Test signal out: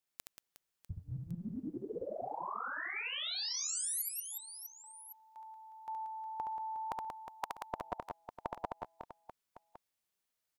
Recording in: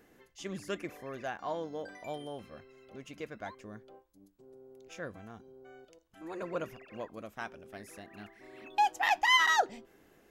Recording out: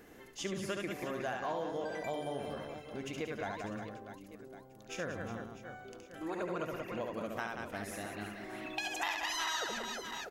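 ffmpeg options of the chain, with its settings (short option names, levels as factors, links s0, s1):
-af "afftfilt=real='re*lt(hypot(re,im),0.224)':imag='im*lt(hypot(re,im),0.224)':win_size=1024:overlap=0.75,aecho=1:1:70|182|361.2|647.9|1107:0.631|0.398|0.251|0.158|0.1,acompressor=threshold=0.00891:ratio=3,volume=1.88"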